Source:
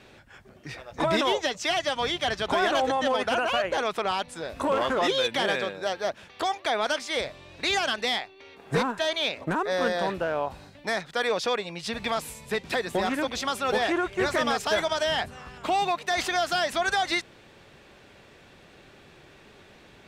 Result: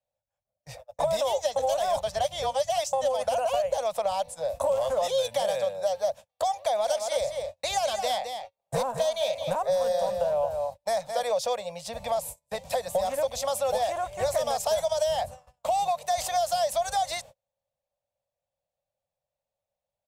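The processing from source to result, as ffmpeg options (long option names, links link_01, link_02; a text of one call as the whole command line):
ffmpeg -i in.wav -filter_complex "[0:a]asettb=1/sr,asplit=3[link_01][link_02][link_03];[link_01]atrim=end=6.544[link_04];[link_02]atrim=start=6.54:end=11.23,asetpts=PTS-STARTPTS,afade=type=in:duration=0.004:curve=qsin,afade=type=out:start_time=4.686:duration=0.004:curve=qsin,aecho=1:1:217:0.398,atrim=end_sample=206829[link_05];[link_03]atrim=start=11.226[link_06];[link_04][link_05]acrossfade=duration=0.004:curve1=hsin:curve2=qsin[link_07];[link_07][link_06]acrossfade=duration=0.004:curve1=qsin:curve2=hsin,asettb=1/sr,asplit=3[link_08][link_09][link_10];[link_08]atrim=end=11.834[link_11];[link_09]atrim=start=11.83:end=12.37,asetpts=PTS-STARTPTS,afade=type=in:duration=0.004:curve=qsin,afade=type=out:start_time=0.536:duration=0.004:curve=qsin,highshelf=frequency=2100:gain=-3.5[link_12];[link_10]atrim=start=12.366[link_13];[link_11][link_12]acrossfade=duration=0.004:curve1=hsin:curve2=qsin[link_14];[link_14][link_13]acrossfade=duration=0.004:curve1=qsin:curve2=hsin,asplit=3[link_15][link_16][link_17];[link_15]atrim=end=1.562[link_18];[link_16]atrim=start=1.558:end=2.932,asetpts=PTS-STARTPTS,areverse[link_19];[link_17]atrim=start=2.928[link_20];[link_18][link_19]acrossfade=duration=0.004:curve1=hsin:curve2=hsin[link_21];[link_21][link_20]acrossfade=duration=0.004:curve1=hsin:curve2=hsin,agate=range=-37dB:threshold=-39dB:ratio=16:detection=peak,firequalizer=gain_entry='entry(110,0);entry(360,-25);entry(540,11);entry(1400,-12);entry(7300,5);entry(13000,9)':delay=0.05:min_phase=1,acrossover=split=150|3000[link_22][link_23][link_24];[link_23]acompressor=threshold=-23dB:ratio=6[link_25];[link_22][link_25][link_24]amix=inputs=3:normalize=0" out.wav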